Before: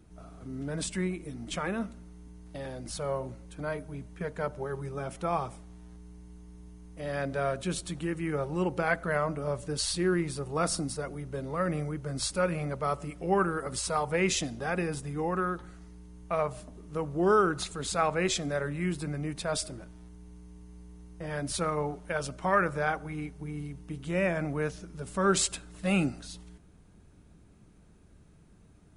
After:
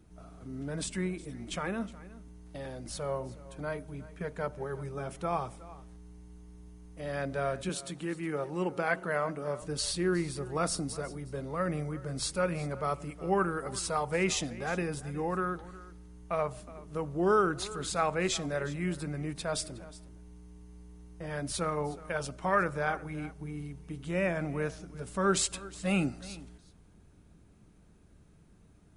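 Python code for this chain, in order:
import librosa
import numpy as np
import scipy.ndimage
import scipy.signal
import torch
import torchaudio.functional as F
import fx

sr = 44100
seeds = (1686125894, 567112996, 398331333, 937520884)

y = fx.highpass(x, sr, hz=170.0, slope=12, at=(7.69, 9.62))
y = y + 10.0 ** (-18.5 / 20.0) * np.pad(y, (int(364 * sr / 1000.0), 0))[:len(y)]
y = y * 10.0 ** (-2.0 / 20.0)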